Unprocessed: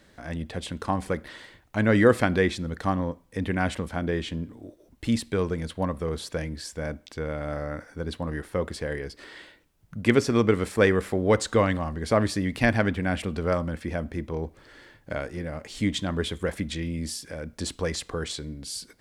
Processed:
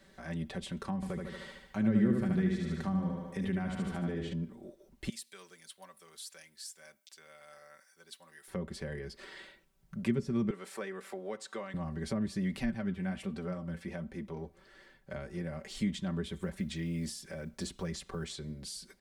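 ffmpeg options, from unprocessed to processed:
-filter_complex "[0:a]asettb=1/sr,asplit=3[a][b][c];[a]atrim=end=0.954[d];[b]atrim=start=0.95:end=4.33,asetpts=PTS-STARTPTS,afade=t=in:d=0.004:c=qsin,afade=t=out:st=3.376:d=0.004:c=qsin,aecho=1:1:74|148|222|296|370|444|518:0.631|0.341|0.184|0.0994|0.0537|0.029|0.0156,atrim=end_sample=149058[e];[c]atrim=start=4.326[f];[d][e]acrossfade=d=0.004:c1=hsin:c2=qsin[g];[g][f]acrossfade=d=0.004:c1=qsin:c2=hsin,asettb=1/sr,asplit=3[h][i][j];[h]atrim=end=5.094[k];[i]atrim=start=5.09:end=8.48,asetpts=PTS-STARTPTS,afade=t=in:d=0.004:c=qsin,afade=t=out:st=3.386:d=0.004:c=qsin,aderivative[l];[j]atrim=start=8.476[m];[k][l]acrossfade=d=0.004:c1=hsin:c2=qsin[n];[n][m]acrossfade=d=0.004:c1=qsin:c2=hsin,asettb=1/sr,asplit=3[o][p][q];[o]atrim=end=10.504[r];[p]atrim=start=10.5:end=11.74,asetpts=PTS-STARTPTS,afade=t=in:d=0.004:c=qsin,afade=t=out:st=1.236:d=0.004:c=qsin,highpass=520[s];[q]atrim=start=11.736[t];[r][s]acrossfade=d=0.004:c1=hsin:c2=qsin[u];[u][t]acrossfade=d=0.004:c1=qsin:c2=hsin,asettb=1/sr,asplit=3[v][w][x];[v]atrim=end=12.614[y];[w]atrim=start=12.61:end=15.13,asetpts=PTS-STARTPTS,afade=t=in:d=0.004:c=qsin,afade=t=out:st=2.516:d=0.004:c=qsin,flanger=delay=3.8:depth=7.9:regen=57:speed=1.3:shape=sinusoidal[z];[x]atrim=start=15.126[aa];[y][z]acrossfade=d=0.004:c1=hsin:c2=qsin[ab];[ab][aa]acrossfade=d=0.004:c1=qsin:c2=hsin,asettb=1/sr,asplit=3[ac][ad][ae];[ac]atrim=end=16.334[af];[ad]atrim=start=16.33:end=18.3,asetpts=PTS-STARTPTS,afade=t=in:d=0.004:c=qsin,afade=t=out:st=1.966:d=0.004:c=qsin,acrusher=bits=9:mode=log:mix=0:aa=0.000001[ag];[ae]atrim=start=18.296[ah];[af][ag]acrossfade=d=0.004:c1=hsin:c2=qsin[ai];[ai][ah]acrossfade=d=0.004:c1=qsin:c2=hsin,aecho=1:1:5.2:0.77,acrossover=split=260[aj][ak];[ak]acompressor=threshold=-34dB:ratio=10[al];[aj][al]amix=inputs=2:normalize=0,volume=-6dB"

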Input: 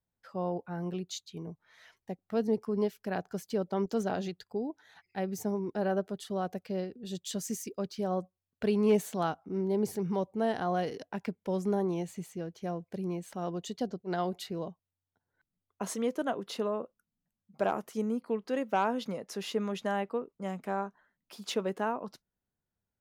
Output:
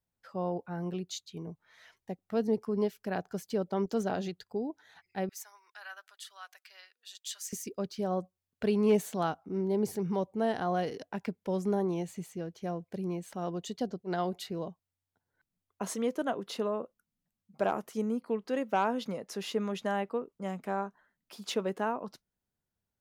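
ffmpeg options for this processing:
-filter_complex "[0:a]asettb=1/sr,asplit=3[a][b][c];[a]atrim=end=5.294[d];[b]atrim=start=5.29:end=7.53,asetpts=PTS-STARTPTS,afade=t=in:d=0.004:c=qsin,afade=t=out:st=2.236:d=0.004:c=qsin,highpass=f=1.3k:w=0.5412,highpass=f=1.3k:w=1.3066[e];[c]atrim=start=7.526[f];[d][e]acrossfade=d=0.004:c1=hsin:c2=qsin[g];[g][f]acrossfade=d=0.004:c1=qsin:c2=hsin"

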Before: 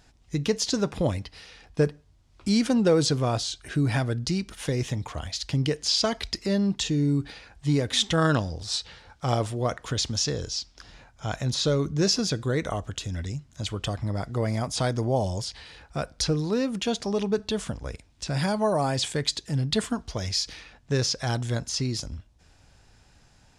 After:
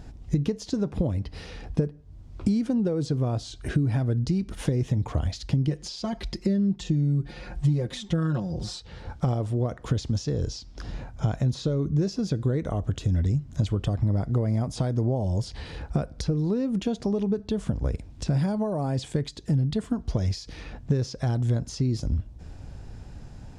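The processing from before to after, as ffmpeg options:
-filter_complex "[0:a]asettb=1/sr,asplit=3[a][b][c];[a]atrim=end=5.674[d];[b]atrim=start=5.67:end=8.8,asetpts=PTS-STARTPTS,afade=t=in:d=0.004:c=qsin,afade=t=out:st=3.126:d=0.004:c=qsin,aecho=1:1:5.6:0.93,atrim=end_sample=138033[e];[c]atrim=start=8.796[f];[d][e]acrossfade=d=0.004:c1=hsin:c2=qsin[g];[g][f]acrossfade=d=0.004:c1=qsin:c2=hsin,acompressor=threshold=-37dB:ratio=12,tiltshelf=f=730:g=8.5,volume=9dB"

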